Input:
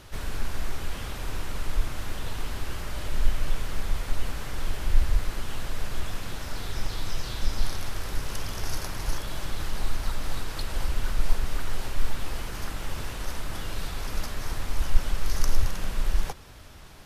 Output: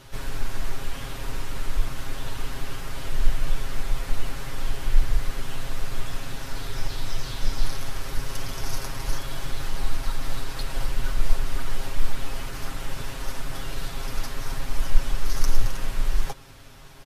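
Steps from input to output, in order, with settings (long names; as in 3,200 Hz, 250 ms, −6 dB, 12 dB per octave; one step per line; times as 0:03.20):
comb filter 7.4 ms, depth 78%
level −1 dB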